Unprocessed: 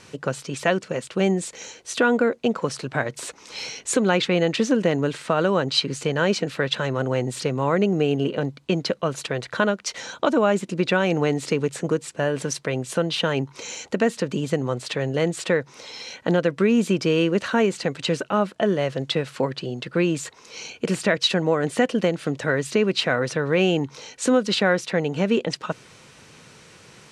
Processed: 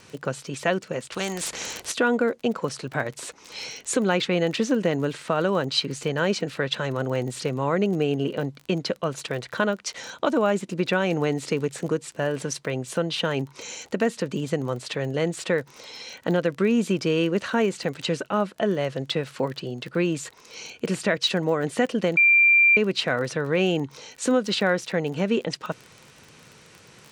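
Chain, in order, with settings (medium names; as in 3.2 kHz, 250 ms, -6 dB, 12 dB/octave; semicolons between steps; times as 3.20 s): crackle 25 per s -30 dBFS; 1.12–1.92 s: spectrum-flattening compressor 2:1; 22.17–22.77 s: bleep 2.37 kHz -10.5 dBFS; trim -2.5 dB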